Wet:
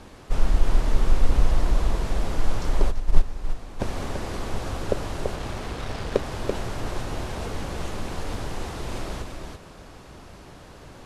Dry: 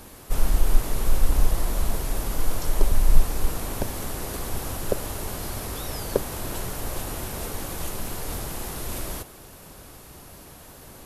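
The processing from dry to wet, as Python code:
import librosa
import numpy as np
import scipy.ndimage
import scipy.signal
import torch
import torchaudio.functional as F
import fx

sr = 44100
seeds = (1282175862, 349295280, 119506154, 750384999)

y = fx.dead_time(x, sr, dead_ms=0.14, at=(5.35, 6.24))
y = fx.air_absorb(y, sr, metres=99.0)
y = y + 10.0 ** (-5.0 / 20.0) * np.pad(y, (int(336 * sr / 1000.0), 0))[:len(y)]
y = fx.upward_expand(y, sr, threshold_db=-14.0, expansion=2.5, at=(2.9, 3.79), fade=0.02)
y = y * 10.0 ** (1.0 / 20.0)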